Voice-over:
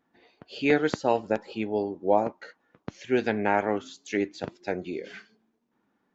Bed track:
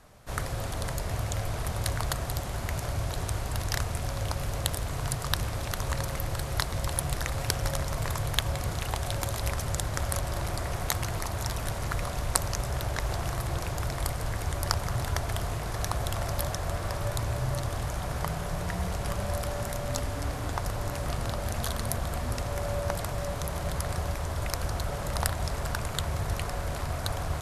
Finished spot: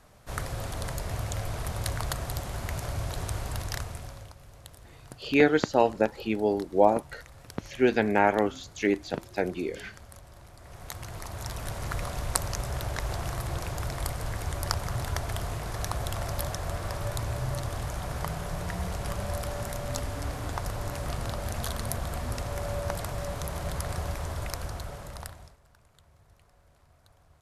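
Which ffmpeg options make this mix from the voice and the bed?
ffmpeg -i stem1.wav -i stem2.wav -filter_complex "[0:a]adelay=4700,volume=2dB[link_01];[1:a]volume=16dB,afade=type=out:start_time=3.48:duration=0.86:silence=0.133352,afade=type=in:start_time=10.58:duration=1.38:silence=0.133352,afade=type=out:start_time=24.26:duration=1.31:silence=0.0398107[link_02];[link_01][link_02]amix=inputs=2:normalize=0" out.wav

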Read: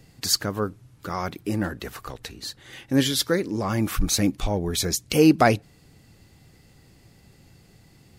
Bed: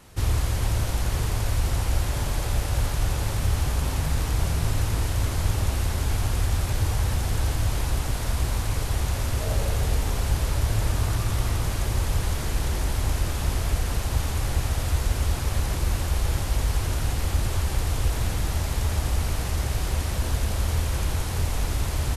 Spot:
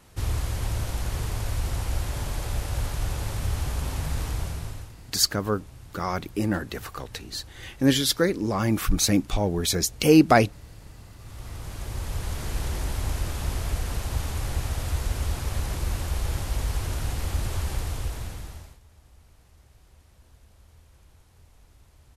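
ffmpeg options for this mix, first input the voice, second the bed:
ffmpeg -i stem1.wav -i stem2.wav -filter_complex "[0:a]adelay=4900,volume=0.5dB[link_01];[1:a]volume=15dB,afade=type=out:start_time=4.26:duration=0.68:silence=0.11885,afade=type=in:start_time=11.17:duration=1.41:silence=0.112202,afade=type=out:start_time=17.7:duration=1.09:silence=0.0473151[link_02];[link_01][link_02]amix=inputs=2:normalize=0" out.wav

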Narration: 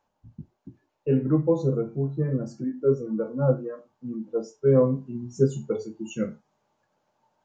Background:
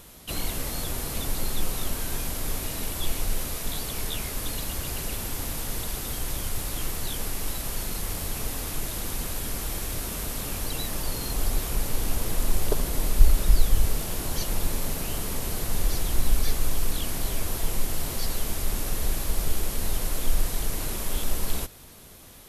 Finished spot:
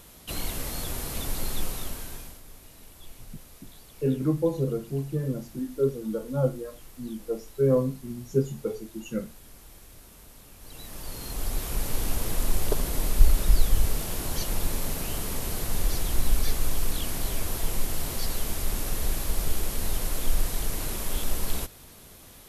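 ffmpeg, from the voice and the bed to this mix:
ffmpeg -i stem1.wav -i stem2.wav -filter_complex "[0:a]adelay=2950,volume=-3dB[link_01];[1:a]volume=15.5dB,afade=type=out:start_time=1.57:duration=0.85:silence=0.149624,afade=type=in:start_time=10.58:duration=1.37:silence=0.133352[link_02];[link_01][link_02]amix=inputs=2:normalize=0" out.wav

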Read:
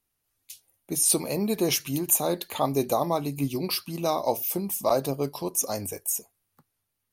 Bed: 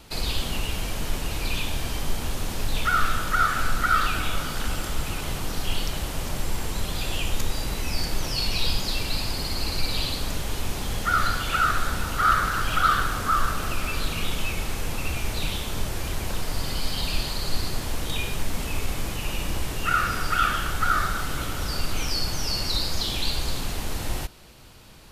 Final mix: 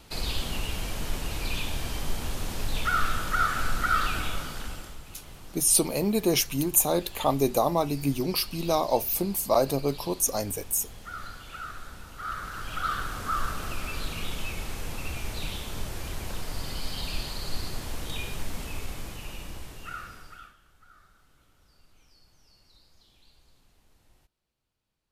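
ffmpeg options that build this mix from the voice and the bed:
ffmpeg -i stem1.wav -i stem2.wav -filter_complex "[0:a]adelay=4650,volume=1dB[link_01];[1:a]volume=7.5dB,afade=type=out:start_time=4.18:duration=0.82:silence=0.211349,afade=type=in:start_time=12.16:duration=1.28:silence=0.281838,afade=type=out:start_time=18.44:duration=2.11:silence=0.0375837[link_02];[link_01][link_02]amix=inputs=2:normalize=0" out.wav

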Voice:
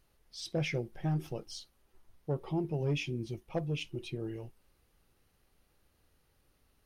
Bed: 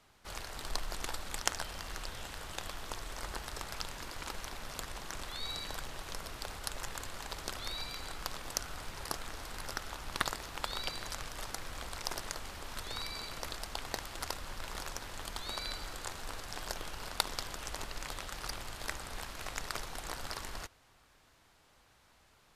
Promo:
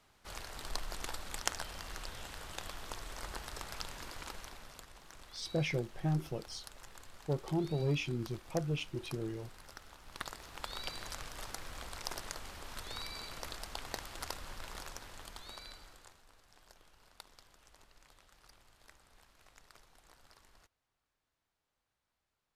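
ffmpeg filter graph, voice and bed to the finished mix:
ffmpeg -i stem1.wav -i stem2.wav -filter_complex "[0:a]adelay=5000,volume=-0.5dB[link_01];[1:a]volume=7dB,afade=type=out:start_time=4.11:duration=0.75:silence=0.316228,afade=type=in:start_time=10.02:duration=0.97:silence=0.334965,afade=type=out:start_time=14.47:duration=1.77:silence=0.11885[link_02];[link_01][link_02]amix=inputs=2:normalize=0" out.wav

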